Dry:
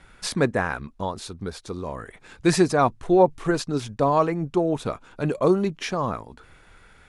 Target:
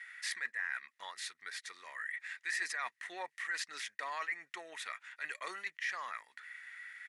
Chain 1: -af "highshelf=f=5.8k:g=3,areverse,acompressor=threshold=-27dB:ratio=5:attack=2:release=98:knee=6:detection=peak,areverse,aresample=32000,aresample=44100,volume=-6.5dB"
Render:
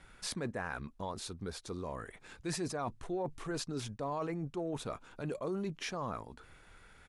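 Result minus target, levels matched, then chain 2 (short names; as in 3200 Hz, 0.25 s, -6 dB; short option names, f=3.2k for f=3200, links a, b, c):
2000 Hz band -11.0 dB
-af "highpass=f=1.9k:t=q:w=16,highshelf=f=5.8k:g=3,areverse,acompressor=threshold=-27dB:ratio=5:attack=2:release=98:knee=6:detection=peak,areverse,aresample=32000,aresample=44100,volume=-6.5dB"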